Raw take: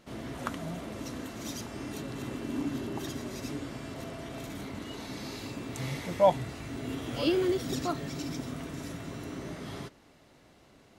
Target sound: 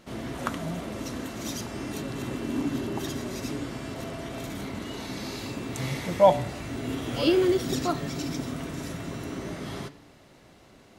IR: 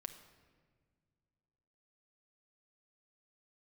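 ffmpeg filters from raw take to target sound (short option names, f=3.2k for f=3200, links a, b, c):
-filter_complex "[0:a]bandreject=f=145:t=h:w=4,bandreject=f=290:t=h:w=4,bandreject=f=435:t=h:w=4,bandreject=f=580:t=h:w=4,bandreject=f=725:t=h:w=4,bandreject=f=870:t=h:w=4,bandreject=f=1.015k:t=h:w=4,bandreject=f=1.16k:t=h:w=4,bandreject=f=1.305k:t=h:w=4,bandreject=f=1.45k:t=h:w=4,bandreject=f=1.595k:t=h:w=4,bandreject=f=1.74k:t=h:w=4,bandreject=f=1.885k:t=h:w=4,bandreject=f=2.03k:t=h:w=4,bandreject=f=2.175k:t=h:w=4,bandreject=f=2.32k:t=h:w=4,bandreject=f=2.465k:t=h:w=4,bandreject=f=2.61k:t=h:w=4,bandreject=f=2.755k:t=h:w=4,bandreject=f=2.9k:t=h:w=4,bandreject=f=3.045k:t=h:w=4,bandreject=f=3.19k:t=h:w=4,bandreject=f=3.335k:t=h:w=4,bandreject=f=3.48k:t=h:w=4,bandreject=f=3.625k:t=h:w=4,bandreject=f=3.77k:t=h:w=4,bandreject=f=3.915k:t=h:w=4,bandreject=f=4.06k:t=h:w=4,bandreject=f=4.205k:t=h:w=4,bandreject=f=4.35k:t=h:w=4,bandreject=f=4.495k:t=h:w=4,bandreject=f=4.64k:t=h:w=4,bandreject=f=4.785k:t=h:w=4,bandreject=f=4.93k:t=h:w=4,bandreject=f=5.075k:t=h:w=4,bandreject=f=5.22k:t=h:w=4,bandreject=f=5.365k:t=h:w=4,asplit=2[a][b];[1:a]atrim=start_sample=2205,asetrate=48510,aresample=44100[c];[b][c]afir=irnorm=-1:irlink=0,volume=-5dB[d];[a][d]amix=inputs=2:normalize=0,volume=2.5dB"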